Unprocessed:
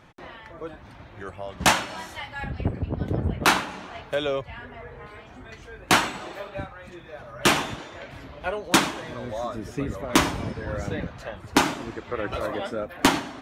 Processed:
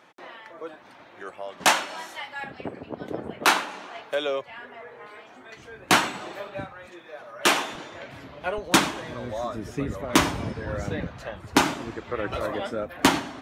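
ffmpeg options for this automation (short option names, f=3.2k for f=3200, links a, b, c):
-af "asetnsamples=n=441:p=0,asendcmd='5.57 highpass f 120;6.86 highpass f 330;7.75 highpass f 110;8.58 highpass f 47',highpass=330"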